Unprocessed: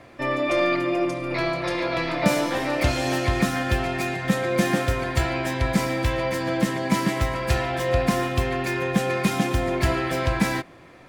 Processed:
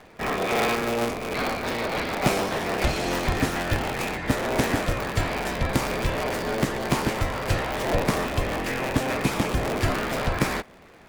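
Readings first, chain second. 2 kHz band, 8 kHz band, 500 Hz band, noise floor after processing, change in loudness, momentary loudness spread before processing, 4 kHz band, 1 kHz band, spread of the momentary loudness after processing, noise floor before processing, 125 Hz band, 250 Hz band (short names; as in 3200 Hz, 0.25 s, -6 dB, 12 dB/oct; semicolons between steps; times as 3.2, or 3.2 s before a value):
-1.5 dB, +0.5 dB, -2.0 dB, -49 dBFS, -2.0 dB, 3 LU, 0.0 dB, -0.5 dB, 3 LU, -47 dBFS, -2.5 dB, -3.5 dB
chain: cycle switcher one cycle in 3, inverted; gain -2 dB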